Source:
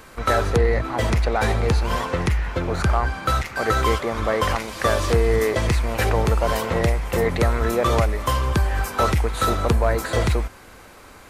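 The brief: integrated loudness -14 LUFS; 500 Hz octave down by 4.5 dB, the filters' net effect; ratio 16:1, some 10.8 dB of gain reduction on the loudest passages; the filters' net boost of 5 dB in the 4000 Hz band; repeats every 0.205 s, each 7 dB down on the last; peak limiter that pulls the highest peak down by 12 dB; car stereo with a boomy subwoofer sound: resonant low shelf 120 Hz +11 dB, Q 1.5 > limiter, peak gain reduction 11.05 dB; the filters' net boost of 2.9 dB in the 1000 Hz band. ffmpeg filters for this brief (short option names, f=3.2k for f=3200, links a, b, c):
-af "equalizer=f=500:t=o:g=-6,equalizer=f=1k:t=o:g=5,equalizer=f=4k:t=o:g=6,acompressor=threshold=-25dB:ratio=16,alimiter=limit=-24dB:level=0:latency=1,lowshelf=f=120:t=q:w=1.5:g=11,aecho=1:1:205|410|615|820|1025:0.447|0.201|0.0905|0.0407|0.0183,volume=15.5dB,alimiter=limit=-5dB:level=0:latency=1"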